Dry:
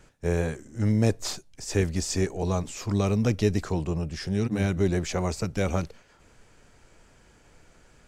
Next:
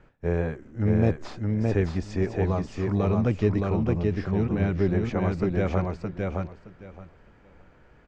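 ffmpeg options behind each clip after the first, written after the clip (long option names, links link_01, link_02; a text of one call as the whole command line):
ffmpeg -i in.wav -filter_complex "[0:a]lowpass=2100,asplit=2[link_01][link_02];[link_02]aecho=0:1:618|1236|1854:0.708|0.127|0.0229[link_03];[link_01][link_03]amix=inputs=2:normalize=0" out.wav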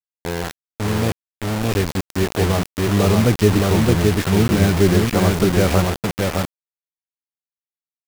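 ffmpeg -i in.wav -af "dynaudnorm=framelen=440:gausssize=9:maxgain=16.5dB,acrusher=bits=3:mix=0:aa=0.000001" out.wav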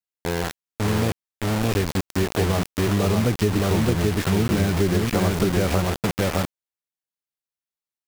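ffmpeg -i in.wav -af "acompressor=threshold=-17dB:ratio=4" out.wav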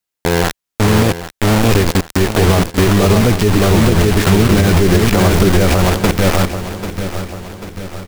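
ffmpeg -i in.wav -af "asubboost=boost=3:cutoff=63,aecho=1:1:791|1582|2373|3164|3955:0.237|0.121|0.0617|0.0315|0.016,alimiter=level_in=12.5dB:limit=-1dB:release=50:level=0:latency=1,volume=-1dB" out.wav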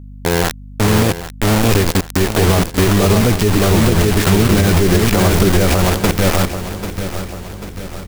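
ffmpeg -i in.wav -af "highshelf=frequency=6100:gain=4.5,aeval=exprs='val(0)+0.0282*(sin(2*PI*50*n/s)+sin(2*PI*2*50*n/s)/2+sin(2*PI*3*50*n/s)/3+sin(2*PI*4*50*n/s)/4+sin(2*PI*5*50*n/s)/5)':channel_layout=same,volume=-1.5dB" out.wav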